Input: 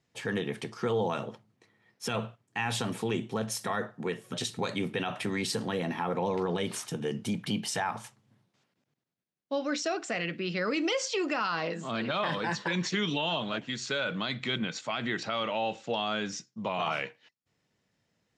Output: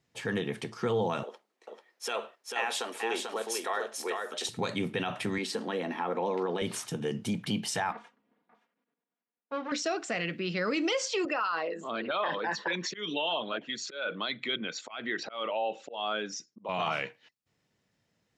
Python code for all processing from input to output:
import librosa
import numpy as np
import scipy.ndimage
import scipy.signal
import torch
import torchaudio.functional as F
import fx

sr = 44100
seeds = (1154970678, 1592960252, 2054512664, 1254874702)

y = fx.chain(x, sr, fx.highpass(hz=370.0, slope=24),
    fx.echo_single(ms=441, db=-4.0), at=(1.23, 4.49))
y = fx.chain(y, sr, fx.highpass(hz=220.0, slope=24),
    fx.high_shelf(hz=5400.0, db=-8.5), at=(5.38, 6.62))
y = fx.chain(y, sr, fx.lower_of_two(delay_ms=4.2),
    fx.bandpass_edges(low_hz=270.0, high_hz=2200.0),
    fx.echo_single(ms=572, db=-19.5), at=(7.92, 9.72))
y = fx.chain(y, sr, fx.envelope_sharpen(power=1.5),
    fx.auto_swell(attack_ms=163.0),
    fx.highpass(hz=300.0, slope=12), at=(11.25, 16.69))